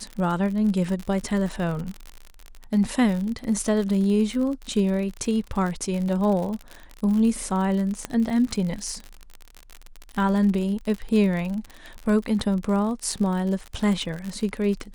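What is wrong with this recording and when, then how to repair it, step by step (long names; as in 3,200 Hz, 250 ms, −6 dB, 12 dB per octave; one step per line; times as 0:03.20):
surface crackle 53 per second −28 dBFS
0:08.05: click −13 dBFS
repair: click removal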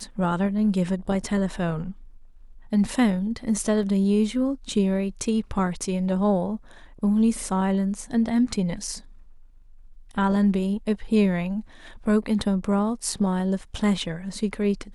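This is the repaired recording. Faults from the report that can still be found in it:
none of them is left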